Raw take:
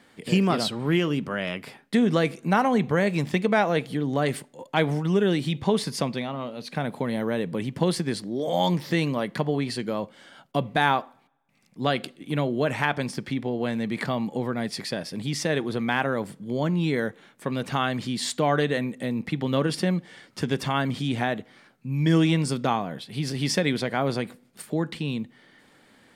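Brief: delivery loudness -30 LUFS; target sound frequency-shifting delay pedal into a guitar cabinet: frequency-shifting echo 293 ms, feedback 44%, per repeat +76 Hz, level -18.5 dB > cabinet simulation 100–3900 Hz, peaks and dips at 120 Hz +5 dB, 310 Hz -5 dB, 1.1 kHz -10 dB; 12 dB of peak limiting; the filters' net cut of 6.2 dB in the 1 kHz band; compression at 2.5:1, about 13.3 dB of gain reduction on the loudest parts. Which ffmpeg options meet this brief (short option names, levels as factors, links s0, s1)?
-filter_complex "[0:a]equalizer=f=1000:t=o:g=-5.5,acompressor=threshold=0.0126:ratio=2.5,alimiter=level_in=2.51:limit=0.0631:level=0:latency=1,volume=0.398,asplit=5[s0][s1][s2][s3][s4];[s1]adelay=293,afreqshift=76,volume=0.119[s5];[s2]adelay=586,afreqshift=152,volume=0.0525[s6];[s3]adelay=879,afreqshift=228,volume=0.0229[s7];[s4]adelay=1172,afreqshift=304,volume=0.0101[s8];[s0][s5][s6][s7][s8]amix=inputs=5:normalize=0,highpass=100,equalizer=f=120:t=q:w=4:g=5,equalizer=f=310:t=q:w=4:g=-5,equalizer=f=1100:t=q:w=4:g=-10,lowpass=f=3900:w=0.5412,lowpass=f=3900:w=1.3066,volume=4.22"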